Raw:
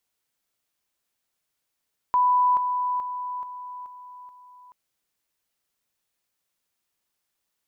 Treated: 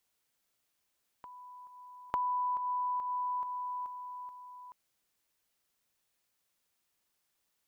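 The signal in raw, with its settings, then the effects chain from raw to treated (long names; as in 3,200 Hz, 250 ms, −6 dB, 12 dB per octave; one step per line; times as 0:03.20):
level staircase 993 Hz −16.5 dBFS, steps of −6 dB, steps 6, 0.43 s 0.00 s
downward compressor 6 to 1, threshold −32 dBFS
backwards echo 899 ms −18.5 dB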